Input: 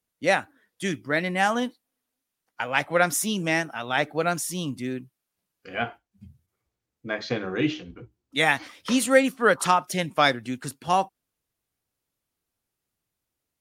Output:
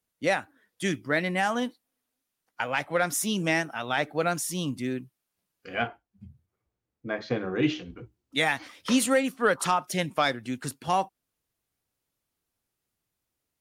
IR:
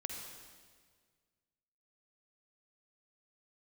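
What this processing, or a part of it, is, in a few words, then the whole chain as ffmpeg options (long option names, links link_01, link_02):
soft clipper into limiter: -filter_complex "[0:a]asettb=1/sr,asplit=3[link_01][link_02][link_03];[link_01]atrim=end=5.874[link_04];[link_02]atrim=start=5.87:end=7.63,asetpts=PTS-STARTPTS,afade=type=in:duration=0.004:curve=qsin,afade=type=out:start_time=1.756:duration=0.004:curve=qsin,highshelf=frequency=2400:gain=-10.5[link_05];[link_03]atrim=start=7.626[link_06];[link_04][link_05]acrossfade=duration=0.004:curve1=hsin:curve2=qsin[link_07];[link_07][link_06]acrossfade=duration=0.004:curve1=qsin:curve2=hsin,asoftclip=type=tanh:threshold=-6dB,alimiter=limit=-13dB:level=0:latency=1:release=395"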